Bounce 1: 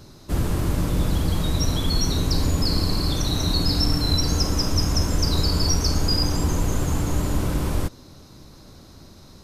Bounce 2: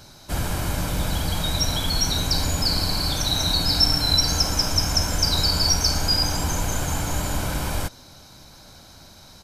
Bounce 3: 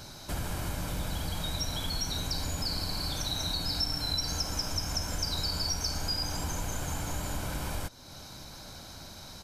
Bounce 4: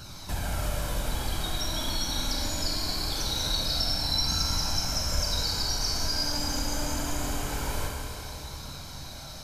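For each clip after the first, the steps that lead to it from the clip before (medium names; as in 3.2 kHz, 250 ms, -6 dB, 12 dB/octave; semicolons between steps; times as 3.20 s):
bass shelf 450 Hz -11 dB; comb 1.3 ms, depth 41%; trim +4.5 dB
compression 2:1, threshold -40 dBFS, peak gain reduction 14.5 dB; trim +1 dB
flange 0.23 Hz, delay 0.7 ms, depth 3 ms, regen +41%; Schroeder reverb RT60 3.3 s, combs from 28 ms, DRR -1 dB; trim +4.5 dB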